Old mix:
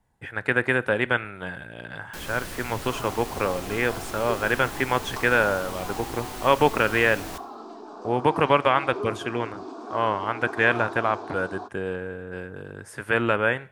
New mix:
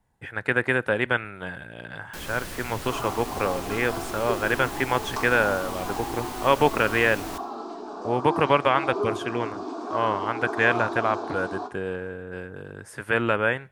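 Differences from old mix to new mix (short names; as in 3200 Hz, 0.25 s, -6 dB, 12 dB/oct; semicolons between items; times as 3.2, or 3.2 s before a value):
speech: send -7.5 dB; second sound: send on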